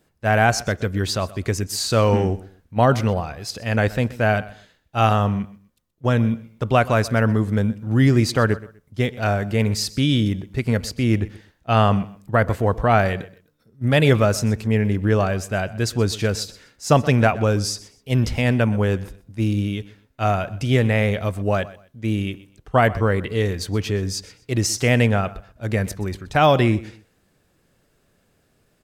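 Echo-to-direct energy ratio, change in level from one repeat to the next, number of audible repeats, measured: −19.0 dB, −12.0 dB, 2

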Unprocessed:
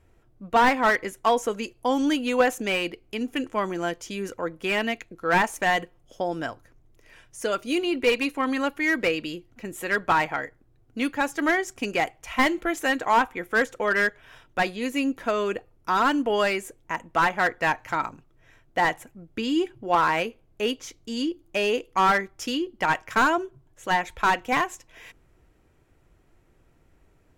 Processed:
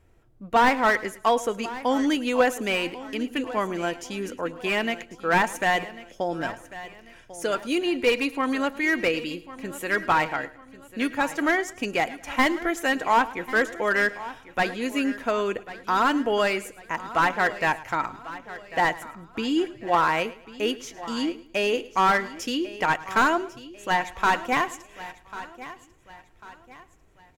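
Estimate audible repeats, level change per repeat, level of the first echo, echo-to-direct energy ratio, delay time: 6, repeats not evenly spaced, −18.5 dB, −13.5 dB, 108 ms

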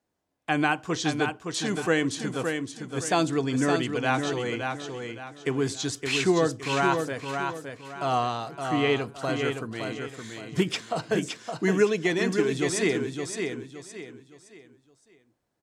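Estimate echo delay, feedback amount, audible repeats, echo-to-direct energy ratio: 566 ms, 33%, 4, −5.0 dB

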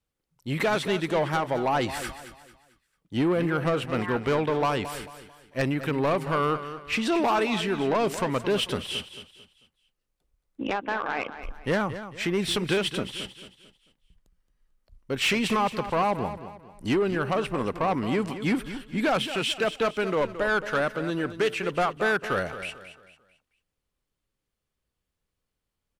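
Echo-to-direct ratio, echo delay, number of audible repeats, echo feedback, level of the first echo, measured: −11.5 dB, 222 ms, 3, 36%, −12.0 dB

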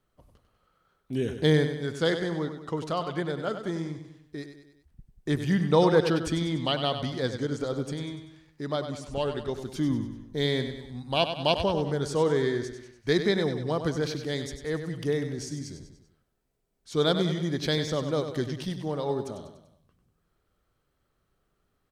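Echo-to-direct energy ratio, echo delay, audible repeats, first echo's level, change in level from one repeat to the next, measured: −7.5 dB, 97 ms, 4, −9.0 dB, −6.0 dB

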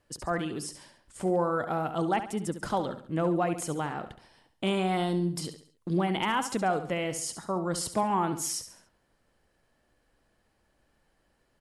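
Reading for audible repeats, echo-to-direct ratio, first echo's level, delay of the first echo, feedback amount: 4, −10.0 dB, −11.0 dB, 69 ms, 42%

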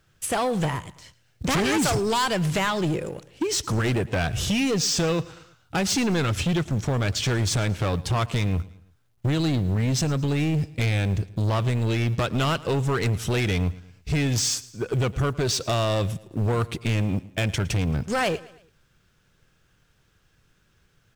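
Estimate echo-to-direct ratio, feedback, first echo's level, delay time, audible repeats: −19.0 dB, 45%, −20.0 dB, 111 ms, 3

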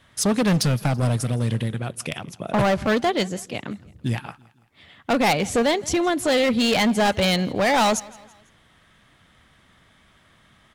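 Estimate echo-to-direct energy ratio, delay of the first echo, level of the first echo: −21.5 dB, 166 ms, −22.5 dB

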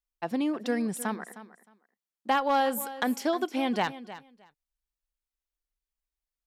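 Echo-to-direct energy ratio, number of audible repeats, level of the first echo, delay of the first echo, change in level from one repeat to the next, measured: −15.0 dB, 2, −15.0 dB, 310 ms, −15.5 dB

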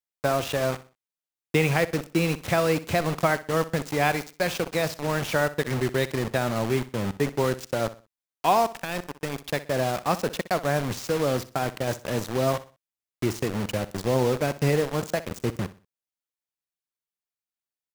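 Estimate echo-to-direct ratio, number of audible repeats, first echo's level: −15.5 dB, 2, −16.0 dB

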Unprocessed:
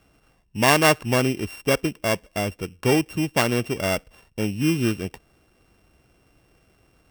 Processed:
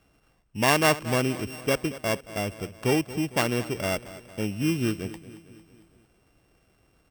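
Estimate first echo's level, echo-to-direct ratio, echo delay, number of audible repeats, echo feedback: −16.0 dB, −14.5 dB, 227 ms, 4, 55%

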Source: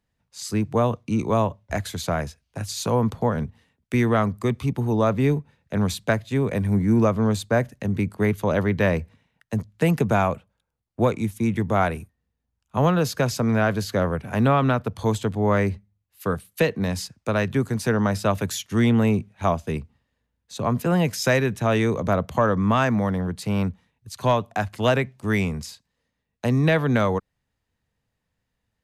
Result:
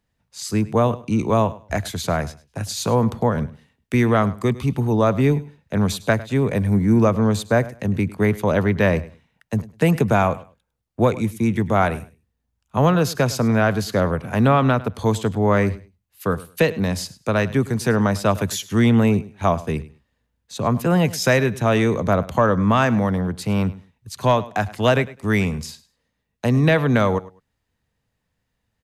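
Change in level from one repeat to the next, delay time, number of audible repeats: −14.5 dB, 103 ms, 2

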